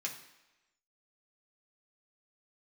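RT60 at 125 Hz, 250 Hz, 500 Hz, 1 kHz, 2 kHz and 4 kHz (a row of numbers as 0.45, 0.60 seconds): 0.75, 0.95, 1.0, 1.1, 1.1, 0.95 seconds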